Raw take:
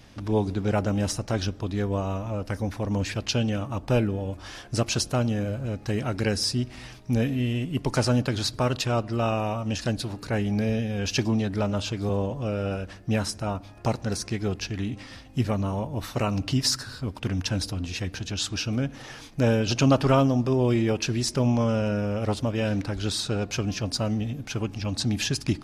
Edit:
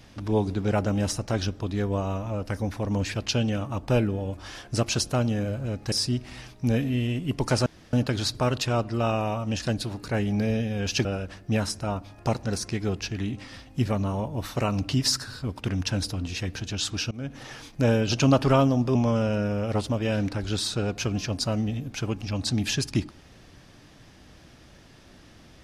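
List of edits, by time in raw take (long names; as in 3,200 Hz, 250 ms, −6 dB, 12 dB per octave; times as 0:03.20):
0:05.92–0:06.38: remove
0:08.12: splice in room tone 0.27 s
0:11.24–0:12.64: remove
0:18.70–0:18.99: fade in, from −23.5 dB
0:20.54–0:21.48: remove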